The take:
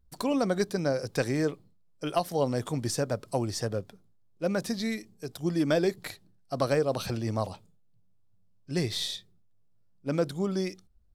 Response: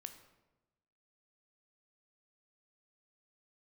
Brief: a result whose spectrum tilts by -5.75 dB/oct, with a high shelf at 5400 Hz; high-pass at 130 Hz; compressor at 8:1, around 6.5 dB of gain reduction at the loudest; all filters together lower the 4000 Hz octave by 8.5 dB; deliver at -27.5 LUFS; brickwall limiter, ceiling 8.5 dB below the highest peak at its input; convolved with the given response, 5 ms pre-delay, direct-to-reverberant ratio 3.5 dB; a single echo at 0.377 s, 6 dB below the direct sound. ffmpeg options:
-filter_complex "[0:a]highpass=130,equalizer=f=4k:t=o:g=-9,highshelf=f=5.4k:g=-3.5,acompressor=threshold=-28dB:ratio=8,alimiter=level_in=1.5dB:limit=-24dB:level=0:latency=1,volume=-1.5dB,aecho=1:1:377:0.501,asplit=2[a][b];[1:a]atrim=start_sample=2205,adelay=5[c];[b][c]afir=irnorm=-1:irlink=0,volume=1.5dB[d];[a][d]amix=inputs=2:normalize=0,volume=7.5dB"

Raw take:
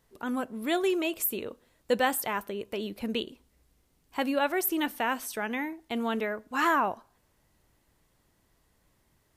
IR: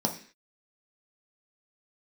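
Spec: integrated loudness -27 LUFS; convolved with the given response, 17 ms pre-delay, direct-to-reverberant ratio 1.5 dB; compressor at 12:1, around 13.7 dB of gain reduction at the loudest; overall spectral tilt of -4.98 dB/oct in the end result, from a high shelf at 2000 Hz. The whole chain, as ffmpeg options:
-filter_complex "[0:a]highshelf=f=2k:g=-4.5,acompressor=threshold=-35dB:ratio=12,asplit=2[a][b];[1:a]atrim=start_sample=2205,adelay=17[c];[b][c]afir=irnorm=-1:irlink=0,volume=-9.5dB[d];[a][d]amix=inputs=2:normalize=0,volume=8dB"

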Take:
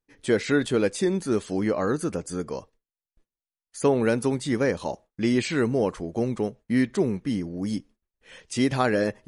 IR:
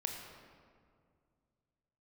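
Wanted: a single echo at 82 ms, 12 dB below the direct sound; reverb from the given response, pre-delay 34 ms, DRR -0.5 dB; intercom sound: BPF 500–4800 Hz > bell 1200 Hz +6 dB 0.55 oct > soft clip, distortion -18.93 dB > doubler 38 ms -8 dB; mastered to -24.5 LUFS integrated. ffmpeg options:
-filter_complex "[0:a]aecho=1:1:82:0.251,asplit=2[a][b];[1:a]atrim=start_sample=2205,adelay=34[c];[b][c]afir=irnorm=-1:irlink=0,volume=-0.5dB[d];[a][d]amix=inputs=2:normalize=0,highpass=500,lowpass=4.8k,equalizer=f=1.2k:t=o:w=0.55:g=6,asoftclip=threshold=-14.5dB,asplit=2[e][f];[f]adelay=38,volume=-8dB[g];[e][g]amix=inputs=2:normalize=0,volume=2dB"

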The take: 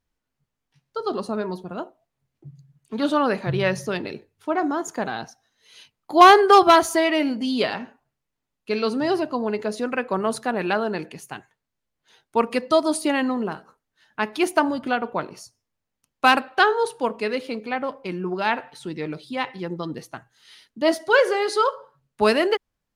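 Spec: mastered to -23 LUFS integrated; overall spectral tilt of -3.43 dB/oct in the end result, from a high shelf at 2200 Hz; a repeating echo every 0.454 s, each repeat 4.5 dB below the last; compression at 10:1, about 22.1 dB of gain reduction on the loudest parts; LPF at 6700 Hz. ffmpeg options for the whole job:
-af "lowpass=6.7k,highshelf=f=2.2k:g=3.5,acompressor=threshold=-29dB:ratio=10,aecho=1:1:454|908|1362|1816|2270|2724|3178|3632|4086:0.596|0.357|0.214|0.129|0.0772|0.0463|0.0278|0.0167|0.01,volume=10.5dB"

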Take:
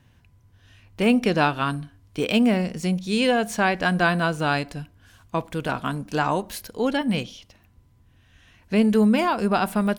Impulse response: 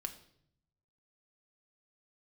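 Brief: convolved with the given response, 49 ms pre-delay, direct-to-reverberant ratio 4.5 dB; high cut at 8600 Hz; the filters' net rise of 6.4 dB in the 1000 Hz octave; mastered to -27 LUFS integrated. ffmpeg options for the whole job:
-filter_complex "[0:a]lowpass=8.6k,equalizer=f=1k:t=o:g=8.5,asplit=2[a][b];[1:a]atrim=start_sample=2205,adelay=49[c];[b][c]afir=irnorm=-1:irlink=0,volume=-2.5dB[d];[a][d]amix=inputs=2:normalize=0,volume=-8dB"

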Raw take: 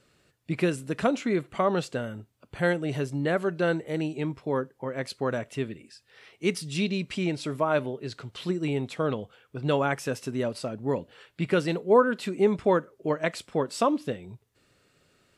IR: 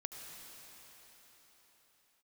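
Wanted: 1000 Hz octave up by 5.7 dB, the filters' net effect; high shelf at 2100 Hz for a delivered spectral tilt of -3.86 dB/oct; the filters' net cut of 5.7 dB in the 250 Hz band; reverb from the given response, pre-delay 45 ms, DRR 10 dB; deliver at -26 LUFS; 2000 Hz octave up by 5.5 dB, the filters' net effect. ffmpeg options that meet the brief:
-filter_complex "[0:a]equalizer=f=250:t=o:g=-9,equalizer=f=1k:t=o:g=6.5,equalizer=f=2k:t=o:g=8,highshelf=f=2.1k:g=-5.5,asplit=2[a][b];[1:a]atrim=start_sample=2205,adelay=45[c];[b][c]afir=irnorm=-1:irlink=0,volume=-8.5dB[d];[a][d]amix=inputs=2:normalize=0,volume=1.5dB"

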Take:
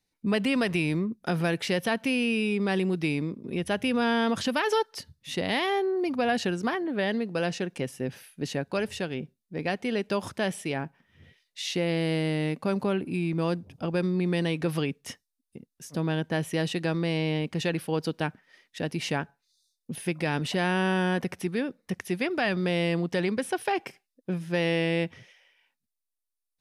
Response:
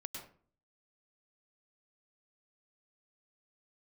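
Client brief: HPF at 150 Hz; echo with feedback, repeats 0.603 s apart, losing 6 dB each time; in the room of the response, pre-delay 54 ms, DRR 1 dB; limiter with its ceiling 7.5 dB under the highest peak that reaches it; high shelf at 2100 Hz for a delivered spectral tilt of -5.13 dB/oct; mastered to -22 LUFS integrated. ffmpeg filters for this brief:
-filter_complex "[0:a]highpass=150,highshelf=f=2.1k:g=-3.5,alimiter=limit=-21.5dB:level=0:latency=1,aecho=1:1:603|1206|1809|2412|3015|3618:0.501|0.251|0.125|0.0626|0.0313|0.0157,asplit=2[a][b];[1:a]atrim=start_sample=2205,adelay=54[c];[b][c]afir=irnorm=-1:irlink=0,volume=1.5dB[d];[a][d]amix=inputs=2:normalize=0,volume=7dB"

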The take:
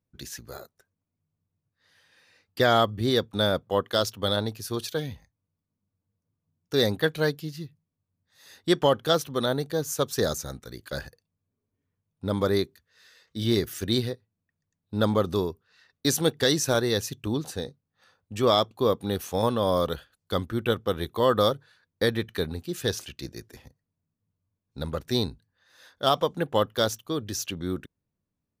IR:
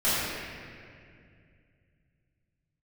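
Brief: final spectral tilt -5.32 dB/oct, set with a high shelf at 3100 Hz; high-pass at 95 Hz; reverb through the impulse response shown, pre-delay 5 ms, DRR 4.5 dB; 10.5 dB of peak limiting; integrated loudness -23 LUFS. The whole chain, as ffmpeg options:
-filter_complex "[0:a]highpass=95,highshelf=f=3.1k:g=-6,alimiter=limit=-19dB:level=0:latency=1,asplit=2[a][b];[1:a]atrim=start_sample=2205,adelay=5[c];[b][c]afir=irnorm=-1:irlink=0,volume=-19.5dB[d];[a][d]amix=inputs=2:normalize=0,volume=9dB"

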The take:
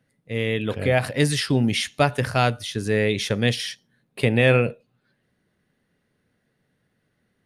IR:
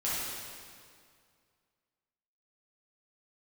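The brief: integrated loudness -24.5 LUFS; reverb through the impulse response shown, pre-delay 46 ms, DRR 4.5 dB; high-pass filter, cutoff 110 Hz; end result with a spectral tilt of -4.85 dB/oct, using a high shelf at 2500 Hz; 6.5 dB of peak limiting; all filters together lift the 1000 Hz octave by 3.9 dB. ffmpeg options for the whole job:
-filter_complex "[0:a]highpass=110,equalizer=f=1k:t=o:g=7.5,highshelf=f=2.5k:g=-7,alimiter=limit=-9.5dB:level=0:latency=1,asplit=2[a][b];[1:a]atrim=start_sample=2205,adelay=46[c];[b][c]afir=irnorm=-1:irlink=0,volume=-12.5dB[d];[a][d]amix=inputs=2:normalize=0,volume=-1dB"

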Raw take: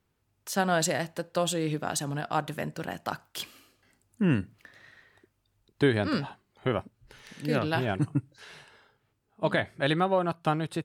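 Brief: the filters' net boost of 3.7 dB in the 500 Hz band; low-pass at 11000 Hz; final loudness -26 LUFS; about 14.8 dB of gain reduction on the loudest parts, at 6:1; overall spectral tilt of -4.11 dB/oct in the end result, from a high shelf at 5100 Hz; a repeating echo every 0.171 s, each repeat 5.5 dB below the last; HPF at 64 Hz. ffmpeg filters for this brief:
-af "highpass=64,lowpass=11k,equalizer=f=500:t=o:g=4.5,highshelf=f=5.1k:g=9,acompressor=threshold=-33dB:ratio=6,aecho=1:1:171|342|513|684|855|1026|1197:0.531|0.281|0.149|0.079|0.0419|0.0222|0.0118,volume=11.5dB"

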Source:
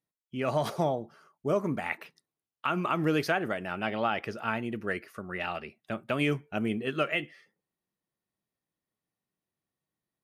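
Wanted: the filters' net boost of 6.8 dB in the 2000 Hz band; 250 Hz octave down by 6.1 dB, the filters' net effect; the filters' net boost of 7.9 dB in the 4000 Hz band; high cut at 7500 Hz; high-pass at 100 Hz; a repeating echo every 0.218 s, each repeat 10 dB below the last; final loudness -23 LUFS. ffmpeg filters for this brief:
-af "highpass=100,lowpass=7.5k,equalizer=f=250:t=o:g=-8.5,equalizer=f=2k:t=o:g=6.5,equalizer=f=4k:t=o:g=8.5,aecho=1:1:218|436|654|872:0.316|0.101|0.0324|0.0104,volume=5.5dB"

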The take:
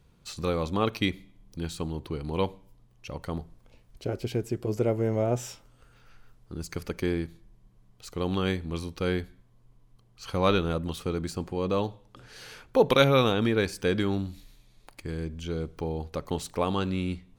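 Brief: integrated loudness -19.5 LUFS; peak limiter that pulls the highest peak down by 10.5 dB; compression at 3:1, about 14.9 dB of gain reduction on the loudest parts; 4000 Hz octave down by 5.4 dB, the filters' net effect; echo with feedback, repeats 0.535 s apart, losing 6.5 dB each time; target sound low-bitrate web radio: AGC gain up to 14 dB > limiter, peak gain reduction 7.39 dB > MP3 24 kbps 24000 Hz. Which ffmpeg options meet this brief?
-af "equalizer=f=4k:t=o:g=-6.5,acompressor=threshold=-36dB:ratio=3,alimiter=level_in=6.5dB:limit=-24dB:level=0:latency=1,volume=-6.5dB,aecho=1:1:535|1070|1605|2140|2675|3210:0.473|0.222|0.105|0.0491|0.0231|0.0109,dynaudnorm=m=14dB,alimiter=limit=-23dB:level=0:latency=1,volume=16dB" -ar 24000 -c:a libmp3lame -b:a 24k

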